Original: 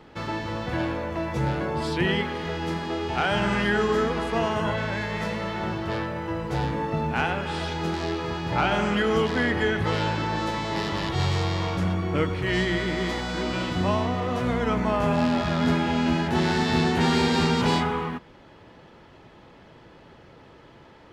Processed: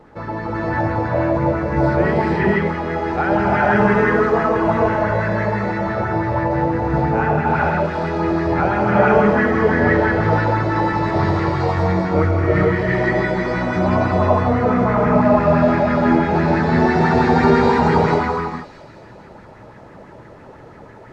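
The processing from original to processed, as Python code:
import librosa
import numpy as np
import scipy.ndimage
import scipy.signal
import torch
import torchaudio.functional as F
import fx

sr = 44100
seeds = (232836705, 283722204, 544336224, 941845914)

y = fx.peak_eq(x, sr, hz=3100.0, db=-12.5, octaves=0.48)
y = fx.quant_dither(y, sr, seeds[0], bits=10, dither='triangular')
y = fx.spacing_loss(y, sr, db_at_10k=25)
y = fx.echo_wet_highpass(y, sr, ms=216, feedback_pct=59, hz=4400.0, wet_db=-5.0)
y = fx.rev_gated(y, sr, seeds[1], gate_ms=490, shape='rising', drr_db=-5.5)
y = fx.bell_lfo(y, sr, hz=6.0, low_hz=540.0, high_hz=2000.0, db=8)
y = y * librosa.db_to_amplitude(2.5)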